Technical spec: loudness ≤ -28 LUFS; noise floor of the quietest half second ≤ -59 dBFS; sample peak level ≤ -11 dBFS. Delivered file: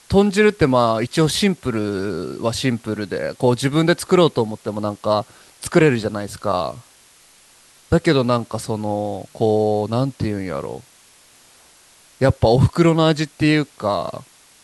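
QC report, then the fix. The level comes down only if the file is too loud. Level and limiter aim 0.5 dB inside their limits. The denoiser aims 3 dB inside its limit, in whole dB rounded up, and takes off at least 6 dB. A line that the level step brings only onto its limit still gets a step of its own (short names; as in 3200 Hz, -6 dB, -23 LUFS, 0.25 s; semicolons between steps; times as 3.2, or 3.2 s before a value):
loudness -19.0 LUFS: fail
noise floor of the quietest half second -51 dBFS: fail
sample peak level -3.0 dBFS: fail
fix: gain -9.5 dB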